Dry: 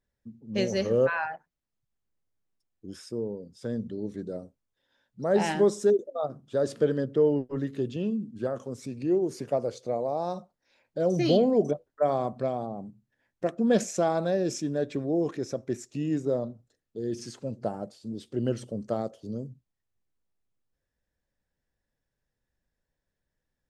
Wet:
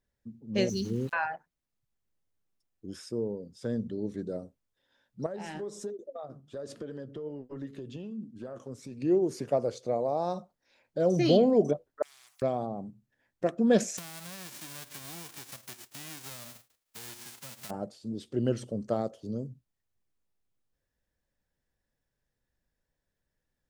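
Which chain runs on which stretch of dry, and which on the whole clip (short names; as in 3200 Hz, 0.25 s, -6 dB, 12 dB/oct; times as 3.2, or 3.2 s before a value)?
0.69–1.13 inverse Chebyshev band-stop 580–2100 Hz + sample gate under -47 dBFS
5.26–9.02 compressor 8:1, threshold -31 dBFS + flange 1.3 Hz, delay 2.7 ms, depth 4.9 ms, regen +74%
12.02–12.42 elliptic high-pass 1900 Hz, stop band 70 dB + spectral compressor 4:1
13.97–17.69 spectral whitening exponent 0.1 + compressor 5:1, threshold -42 dBFS
whole clip: dry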